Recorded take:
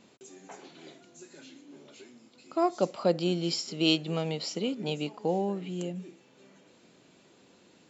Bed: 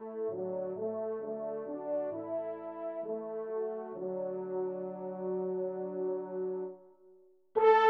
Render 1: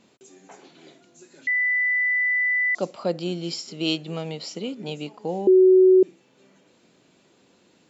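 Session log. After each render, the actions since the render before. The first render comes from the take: 1.47–2.75 s: bleep 1.99 kHz -19 dBFS; 5.47–6.03 s: bleep 373 Hz -10.5 dBFS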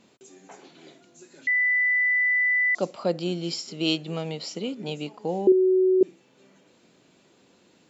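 5.52–6.01 s: gain -6 dB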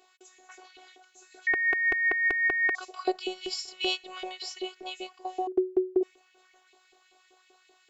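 LFO high-pass saw up 5.2 Hz 460–2600 Hz; robot voice 370 Hz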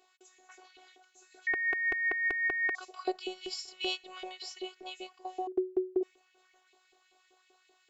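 trim -5 dB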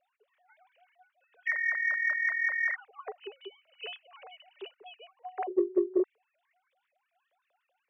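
formants replaced by sine waves; in parallel at -11 dB: saturation -25 dBFS, distortion -13 dB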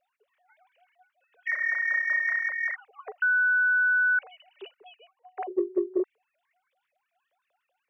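1.49–2.47 s: flutter echo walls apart 5.9 m, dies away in 0.62 s; 3.22–4.19 s: bleep 1.49 kHz -19.5 dBFS; 4.76–5.37 s: fade out linear, to -14.5 dB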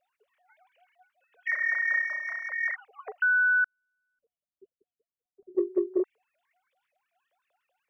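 2.07–2.52 s: peaking EQ 1.8 kHz -8 dB 0.61 oct; 3.64–5.55 s: inverse Chebyshev low-pass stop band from 730 Hz, stop band 50 dB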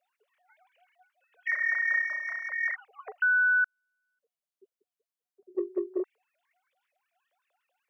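high-pass 160 Hz; bass shelf 390 Hz -8 dB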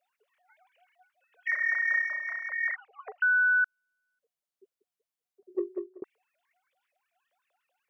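2.09–3.63 s: band-pass 260–4400 Hz; 5.62–6.02 s: fade out

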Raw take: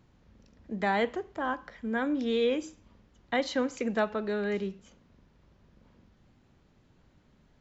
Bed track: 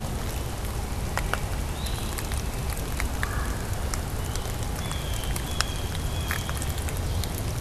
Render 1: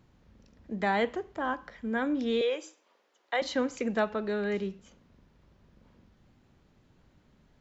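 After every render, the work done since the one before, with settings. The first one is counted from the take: 2.41–3.42 s: high-pass 430 Hz 24 dB/octave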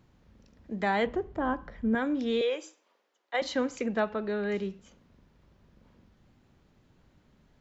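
1.06–1.95 s: tilt EQ -3 dB/octave; 2.62–3.34 s: fade out, to -9 dB; 3.86–4.49 s: distance through air 95 m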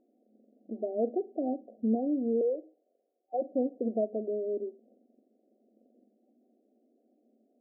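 FFT band-pass 210–770 Hz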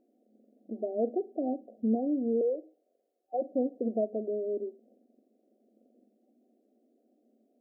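dynamic bell 100 Hz, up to +5 dB, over -58 dBFS, Q 2.8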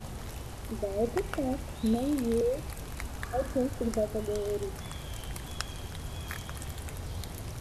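add bed track -10 dB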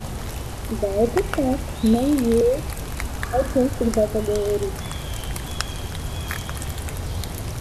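trim +10 dB; peak limiter -3 dBFS, peak gain reduction 1 dB

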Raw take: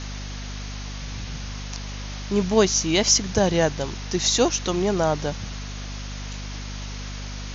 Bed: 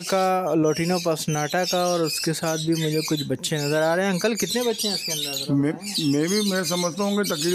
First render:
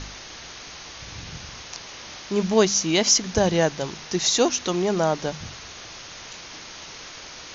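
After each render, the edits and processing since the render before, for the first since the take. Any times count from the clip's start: de-hum 50 Hz, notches 5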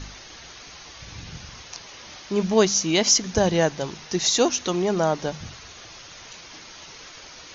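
noise reduction 6 dB, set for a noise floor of -41 dBFS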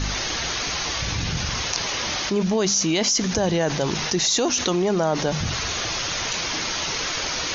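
peak limiter -13.5 dBFS, peak gain reduction 8.5 dB; level flattener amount 70%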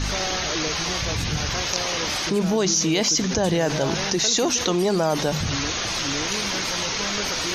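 add bed -10.5 dB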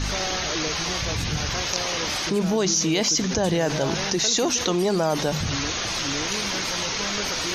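trim -1 dB

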